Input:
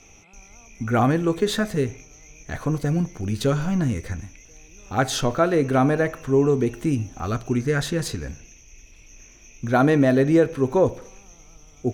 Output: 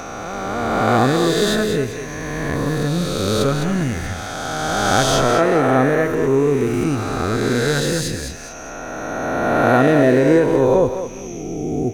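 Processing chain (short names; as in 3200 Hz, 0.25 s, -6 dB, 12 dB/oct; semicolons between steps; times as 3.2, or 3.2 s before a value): spectral swells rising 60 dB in 2.70 s; thinning echo 0.206 s, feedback 21%, level -8 dB; mismatched tape noise reduction encoder only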